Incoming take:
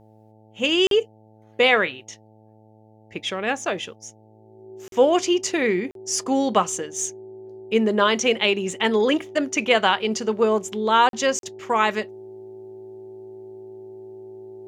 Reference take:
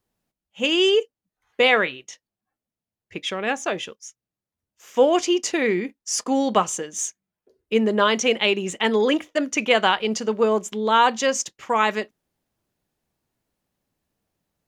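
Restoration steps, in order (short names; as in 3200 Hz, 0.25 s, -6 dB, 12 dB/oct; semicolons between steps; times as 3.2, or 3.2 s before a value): de-hum 108.7 Hz, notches 8; notch 380 Hz, Q 30; interpolate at 0.87/4.88/5.91/11.09/11.39, 42 ms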